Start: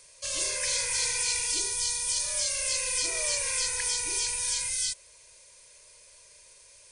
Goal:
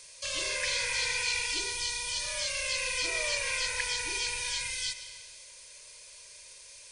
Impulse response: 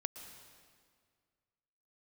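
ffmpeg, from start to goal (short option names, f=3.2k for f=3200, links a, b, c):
-filter_complex "[0:a]acrossover=split=3500[a][b];[b]acompressor=threshold=-41dB:ratio=4:attack=1:release=60[c];[a][c]amix=inputs=2:normalize=0,asplit=2[d][e];[e]equalizer=f=3.7k:w=0.4:g=11.5[f];[1:a]atrim=start_sample=2205[g];[f][g]afir=irnorm=-1:irlink=0,volume=0.5dB[h];[d][h]amix=inputs=2:normalize=0,volume=-6dB"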